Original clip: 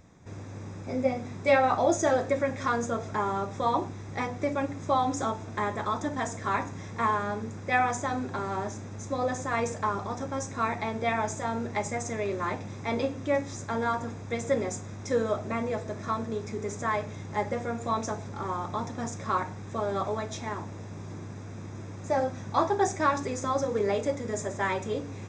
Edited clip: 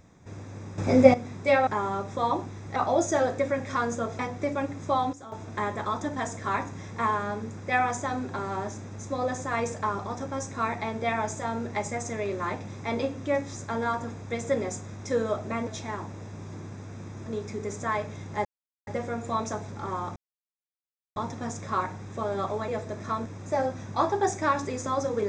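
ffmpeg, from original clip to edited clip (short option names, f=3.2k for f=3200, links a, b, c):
-filter_complex "[0:a]asplit=14[a][b][c][d][e][f][g][h][i][j][k][l][m][n];[a]atrim=end=0.782[o];[b]atrim=start=0.778:end=1.142,asetpts=PTS-STARTPTS,volume=11dB[p];[c]atrim=start=1.138:end=1.672[q];[d]atrim=start=3.098:end=4.192[r];[e]atrim=start=1.668:end=3.102[s];[f]atrim=start=4.188:end=5.13,asetpts=PTS-STARTPTS,afade=t=out:st=0.662:d=0.28:c=log:silence=0.188365[t];[g]atrim=start=5.13:end=5.32,asetpts=PTS-STARTPTS,volume=-14.5dB[u];[h]atrim=start=5.32:end=15.672,asetpts=PTS-STARTPTS,afade=t=in:d=0.28:c=log:silence=0.188365[v];[i]atrim=start=20.248:end=21.842[w];[j]atrim=start=16.248:end=17.44,asetpts=PTS-STARTPTS,afade=t=out:st=1.188:d=0.004:c=hsin,apad=pad_dur=0.42[x];[k]atrim=start=17.44:end=18.73,asetpts=PTS-STARTPTS,afade=t=in:d=0.004:c=hsin,afade=t=out:st=1.286:d=0.004:c=hsin,apad=pad_dur=1[y];[l]atrim=start=18.73:end=20.252,asetpts=PTS-STARTPTS,afade=t=in:d=0.004:c=hsin[z];[m]atrim=start=15.668:end=16.252[aa];[n]atrim=start=21.838[ab];[o][p]acrossfade=d=0.004:c1=hsin:c2=hsin[ac];[ac][q]acrossfade=d=0.004:c1=hsin:c2=hsin[ad];[ad][r]acrossfade=d=0.004:c1=hsin:c2=hsin[ae];[ae][s]acrossfade=d=0.004:c1=hsin:c2=hsin[af];[t][u][v]concat=n=3:v=0:a=1[ag];[af][ag]acrossfade=d=0.004:c1=hsin:c2=hsin[ah];[ah][w]acrossfade=d=0.004:c1=hsin:c2=hsin[ai];[x][y][z]concat=n=3:v=0:a=1[aj];[ai][aj]acrossfade=d=0.004:c1=hsin:c2=hsin[ak];[ak][aa]acrossfade=d=0.004:c1=hsin:c2=hsin[al];[al][ab]acrossfade=d=0.004:c1=hsin:c2=hsin"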